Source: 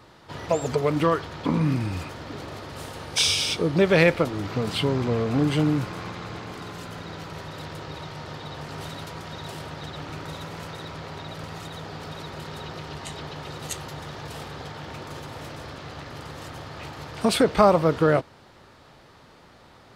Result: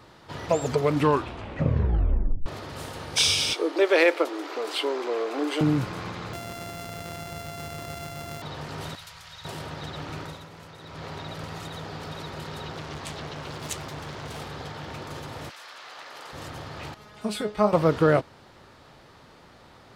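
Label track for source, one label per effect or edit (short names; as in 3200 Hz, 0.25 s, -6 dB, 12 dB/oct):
0.940000	0.940000	tape stop 1.52 s
3.530000	5.610000	elliptic high-pass 320 Hz, stop band 50 dB
6.330000	8.420000	sample sorter in blocks of 64 samples
8.950000	9.450000	passive tone stack bass-middle-treble 10-0-10
10.220000	11.040000	dip -9 dB, fades 0.30 s quadratic
12.720000	14.390000	Doppler distortion depth 0.65 ms
15.490000	16.320000	HPF 1400 Hz -> 510 Hz
16.940000	17.730000	resonator 210 Hz, decay 0.17 s, mix 90%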